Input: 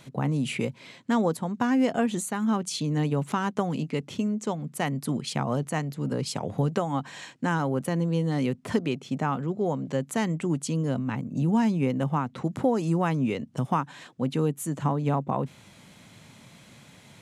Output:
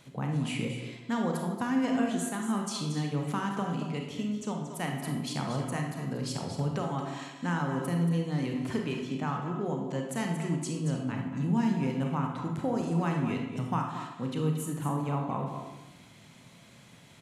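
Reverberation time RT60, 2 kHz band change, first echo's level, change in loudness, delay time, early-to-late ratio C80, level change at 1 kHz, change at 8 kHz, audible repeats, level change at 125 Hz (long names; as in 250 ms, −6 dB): 0.95 s, −3.5 dB, −9.0 dB, −4.0 dB, 231 ms, 5.0 dB, −4.5 dB, −3.5 dB, 1, −3.0 dB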